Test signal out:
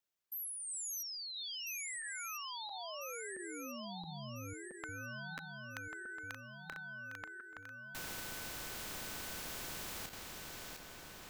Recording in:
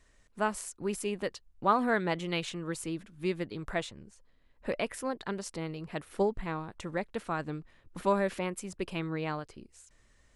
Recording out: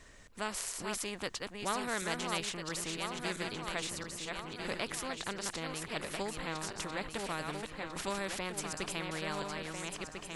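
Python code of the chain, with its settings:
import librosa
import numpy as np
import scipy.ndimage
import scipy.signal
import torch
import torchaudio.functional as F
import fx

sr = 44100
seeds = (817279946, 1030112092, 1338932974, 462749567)

y = fx.reverse_delay_fb(x, sr, ms=673, feedback_pct=54, wet_db=-6.5)
y = fx.peak_eq(y, sr, hz=9700.0, db=-5.0, octaves=0.25)
y = fx.spectral_comp(y, sr, ratio=2.0)
y = y * librosa.db_to_amplitude(-6.5)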